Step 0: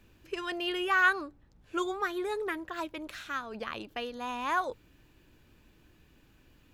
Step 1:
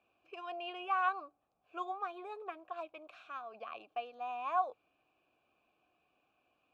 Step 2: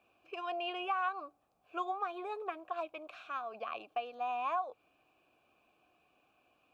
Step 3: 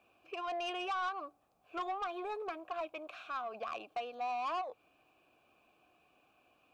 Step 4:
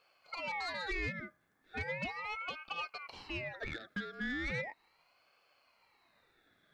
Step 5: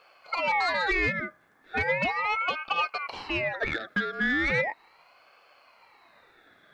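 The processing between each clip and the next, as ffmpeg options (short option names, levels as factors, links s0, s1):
-filter_complex "[0:a]asplit=3[s0][s1][s2];[s0]bandpass=f=730:t=q:w=8,volume=1[s3];[s1]bandpass=f=1090:t=q:w=8,volume=0.501[s4];[s2]bandpass=f=2440:t=q:w=8,volume=0.355[s5];[s3][s4][s5]amix=inputs=3:normalize=0,volume=1.41"
-af "acompressor=threshold=0.0158:ratio=6,volume=1.78"
-af "asoftclip=type=tanh:threshold=0.02,volume=1.26"
-af "aeval=exprs='val(0)*sin(2*PI*1400*n/s+1400*0.35/0.37*sin(2*PI*0.37*n/s))':c=same,volume=1.26"
-af "equalizer=f=970:w=0.31:g=9,volume=1.88"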